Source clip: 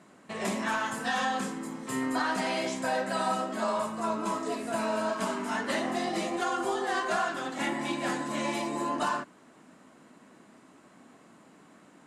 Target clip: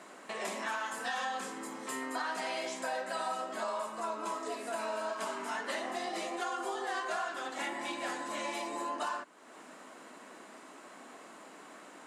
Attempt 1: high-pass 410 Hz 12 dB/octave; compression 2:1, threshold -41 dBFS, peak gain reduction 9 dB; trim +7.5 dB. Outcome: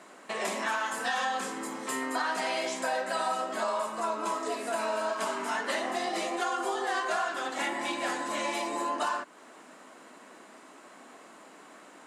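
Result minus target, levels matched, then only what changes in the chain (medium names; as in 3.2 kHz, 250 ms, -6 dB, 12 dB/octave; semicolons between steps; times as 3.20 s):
compression: peak gain reduction -5.5 dB
change: compression 2:1, threshold -52 dBFS, peak gain reduction 14.5 dB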